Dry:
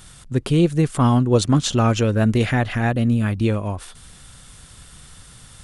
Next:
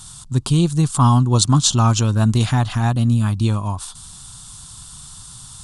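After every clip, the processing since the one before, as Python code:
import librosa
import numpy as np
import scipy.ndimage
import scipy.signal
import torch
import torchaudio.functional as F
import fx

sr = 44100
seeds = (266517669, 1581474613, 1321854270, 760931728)

y = fx.graphic_eq_10(x, sr, hz=(125, 500, 1000, 2000, 4000, 8000), db=(5, -12, 11, -12, 7, 10))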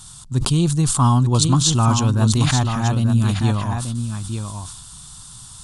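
y = x + 10.0 ** (-7.0 / 20.0) * np.pad(x, (int(885 * sr / 1000.0), 0))[:len(x)]
y = fx.sustainer(y, sr, db_per_s=56.0)
y = F.gain(torch.from_numpy(y), -2.0).numpy()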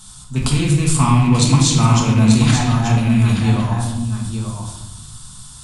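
y = fx.rattle_buzz(x, sr, strikes_db=-17.0, level_db=-20.0)
y = fx.room_shoebox(y, sr, seeds[0], volume_m3=400.0, walls='mixed', distance_m=1.5)
y = F.gain(torch.from_numpy(y), -2.0).numpy()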